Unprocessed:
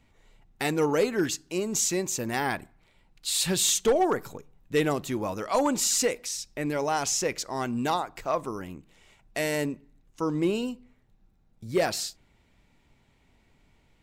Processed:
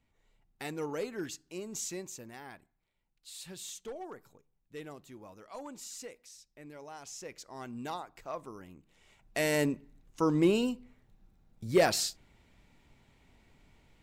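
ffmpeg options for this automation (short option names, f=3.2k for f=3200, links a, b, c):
-af "volume=8.5dB,afade=t=out:st=1.94:d=0.44:silence=0.398107,afade=t=in:st=7.02:d=0.78:silence=0.398107,afade=t=in:st=8.75:d=0.94:silence=0.237137"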